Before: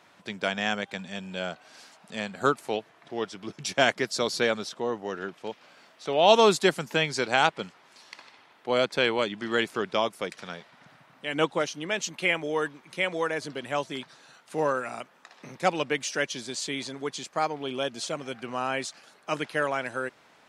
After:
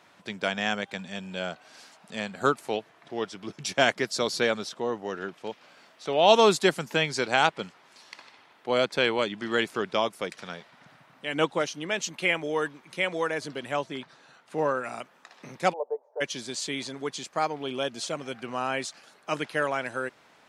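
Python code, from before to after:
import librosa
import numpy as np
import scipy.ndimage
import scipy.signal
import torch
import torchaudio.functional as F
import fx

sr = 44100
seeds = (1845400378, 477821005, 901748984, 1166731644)

y = fx.high_shelf(x, sr, hz=4600.0, db=-9.5, at=(13.76, 14.84))
y = fx.ellip_bandpass(y, sr, low_hz=440.0, high_hz=910.0, order=3, stop_db=60, at=(15.72, 16.2), fade=0.02)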